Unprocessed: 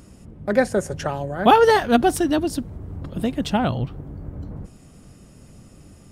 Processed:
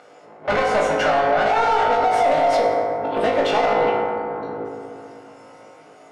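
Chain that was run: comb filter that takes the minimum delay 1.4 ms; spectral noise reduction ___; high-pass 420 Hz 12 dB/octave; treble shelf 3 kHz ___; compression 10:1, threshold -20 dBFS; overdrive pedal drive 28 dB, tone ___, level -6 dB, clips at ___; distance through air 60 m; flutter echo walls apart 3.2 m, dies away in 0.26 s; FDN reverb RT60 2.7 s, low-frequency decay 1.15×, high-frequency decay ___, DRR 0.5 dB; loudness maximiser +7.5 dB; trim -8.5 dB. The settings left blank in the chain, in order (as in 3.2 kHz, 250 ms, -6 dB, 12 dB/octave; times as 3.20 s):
10 dB, -8.5 dB, 2.6 kHz, -11.5 dBFS, 0.35×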